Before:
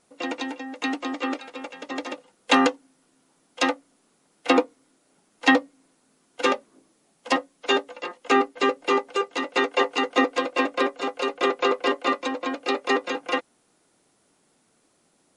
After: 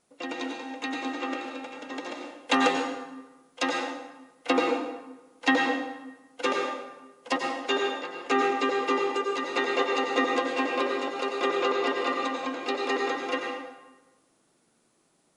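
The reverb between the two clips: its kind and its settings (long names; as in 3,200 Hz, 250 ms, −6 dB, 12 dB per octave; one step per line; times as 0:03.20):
dense smooth reverb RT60 1.1 s, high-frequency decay 0.75×, pre-delay 80 ms, DRR 0.5 dB
level −5.5 dB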